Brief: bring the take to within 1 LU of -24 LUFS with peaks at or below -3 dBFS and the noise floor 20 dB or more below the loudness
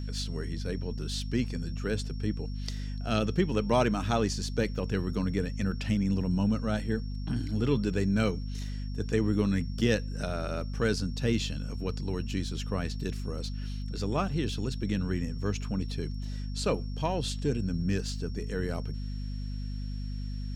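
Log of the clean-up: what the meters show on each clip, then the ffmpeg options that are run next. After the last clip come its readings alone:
hum 50 Hz; highest harmonic 250 Hz; hum level -32 dBFS; steady tone 5.5 kHz; tone level -53 dBFS; loudness -31.5 LUFS; peak level -11.5 dBFS; loudness target -24.0 LUFS
-> -af "bandreject=f=50:t=h:w=6,bandreject=f=100:t=h:w=6,bandreject=f=150:t=h:w=6,bandreject=f=200:t=h:w=6,bandreject=f=250:t=h:w=6"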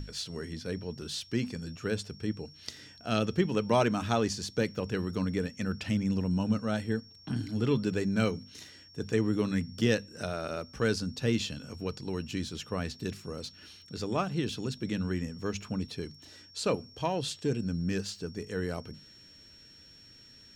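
hum not found; steady tone 5.5 kHz; tone level -53 dBFS
-> -af "bandreject=f=5500:w=30"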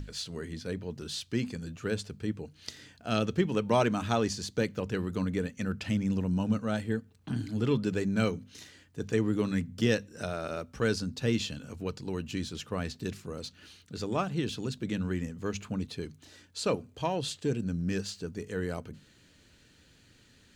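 steady tone not found; loudness -32.5 LUFS; peak level -12.0 dBFS; loudness target -24.0 LUFS
-> -af "volume=2.66"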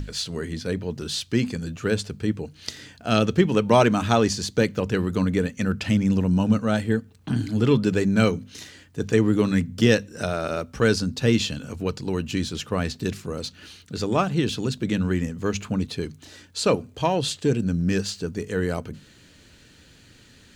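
loudness -24.0 LUFS; peak level -3.5 dBFS; noise floor -53 dBFS

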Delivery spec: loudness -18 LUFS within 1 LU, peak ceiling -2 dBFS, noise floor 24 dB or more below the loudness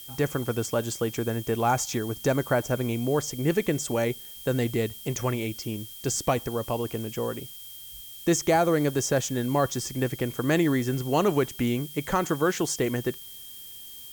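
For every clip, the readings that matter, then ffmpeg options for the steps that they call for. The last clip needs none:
steady tone 3.2 kHz; tone level -47 dBFS; noise floor -43 dBFS; noise floor target -51 dBFS; loudness -27.0 LUFS; peak level -11.5 dBFS; loudness target -18.0 LUFS
-> -af "bandreject=f=3200:w=30"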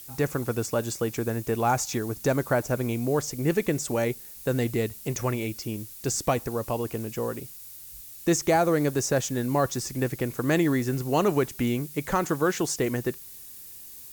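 steady tone not found; noise floor -44 dBFS; noise floor target -51 dBFS
-> -af "afftdn=nr=7:nf=-44"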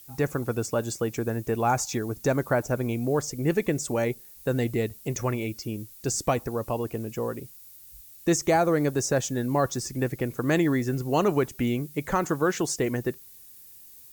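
noise floor -49 dBFS; noise floor target -51 dBFS
-> -af "afftdn=nr=6:nf=-49"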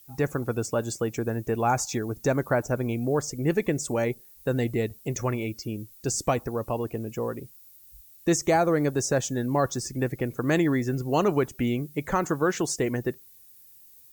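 noise floor -53 dBFS; loudness -27.0 LUFS; peak level -12.0 dBFS; loudness target -18.0 LUFS
-> -af "volume=2.82"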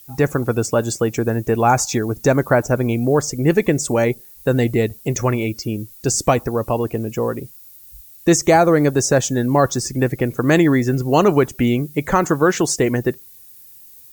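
loudness -18.0 LUFS; peak level -3.0 dBFS; noise floor -44 dBFS

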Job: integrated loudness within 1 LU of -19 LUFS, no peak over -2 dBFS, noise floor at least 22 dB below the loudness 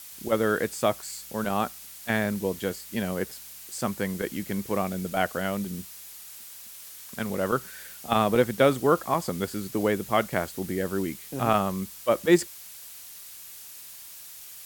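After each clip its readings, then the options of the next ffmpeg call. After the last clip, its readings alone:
noise floor -44 dBFS; noise floor target -50 dBFS; loudness -27.5 LUFS; peak level -8.0 dBFS; loudness target -19.0 LUFS
-> -af "afftdn=nr=6:nf=-44"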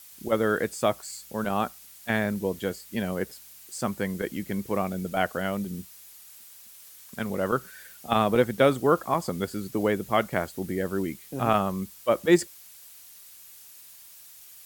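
noise floor -49 dBFS; noise floor target -50 dBFS
-> -af "afftdn=nr=6:nf=-49"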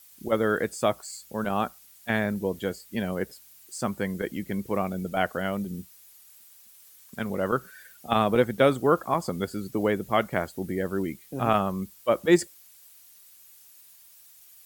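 noise floor -54 dBFS; loudness -27.5 LUFS; peak level -8.0 dBFS; loudness target -19.0 LUFS
-> -af "volume=2.66,alimiter=limit=0.794:level=0:latency=1"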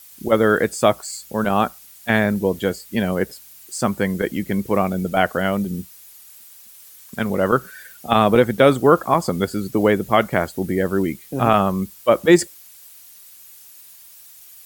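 loudness -19.5 LUFS; peak level -2.0 dBFS; noise floor -45 dBFS

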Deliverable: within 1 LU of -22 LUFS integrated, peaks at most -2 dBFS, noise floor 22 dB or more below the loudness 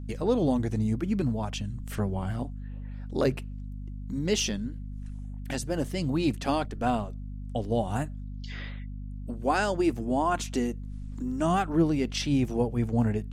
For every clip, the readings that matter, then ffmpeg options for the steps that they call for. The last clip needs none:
hum 50 Hz; highest harmonic 250 Hz; hum level -35 dBFS; loudness -29.0 LUFS; peak level -12.5 dBFS; loudness target -22.0 LUFS
-> -af "bandreject=f=50:t=h:w=6,bandreject=f=100:t=h:w=6,bandreject=f=150:t=h:w=6,bandreject=f=200:t=h:w=6,bandreject=f=250:t=h:w=6"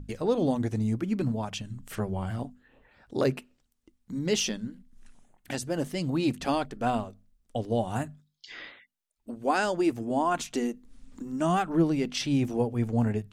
hum not found; loudness -29.5 LUFS; peak level -13.0 dBFS; loudness target -22.0 LUFS
-> -af "volume=2.37"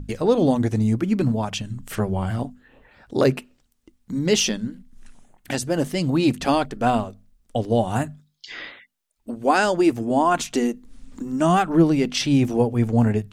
loudness -22.0 LUFS; peak level -5.5 dBFS; noise floor -68 dBFS

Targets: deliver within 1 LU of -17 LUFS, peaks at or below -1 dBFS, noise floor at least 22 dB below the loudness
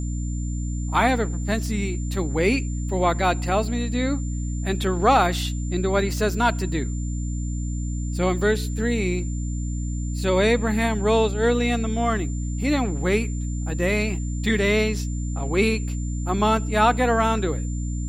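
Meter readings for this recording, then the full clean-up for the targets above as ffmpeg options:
hum 60 Hz; highest harmonic 300 Hz; hum level -24 dBFS; steady tone 7.2 kHz; tone level -41 dBFS; loudness -23.5 LUFS; peak level -5.0 dBFS; loudness target -17.0 LUFS
-> -af "bandreject=f=60:t=h:w=4,bandreject=f=120:t=h:w=4,bandreject=f=180:t=h:w=4,bandreject=f=240:t=h:w=4,bandreject=f=300:t=h:w=4"
-af "bandreject=f=7200:w=30"
-af "volume=2.11,alimiter=limit=0.891:level=0:latency=1"

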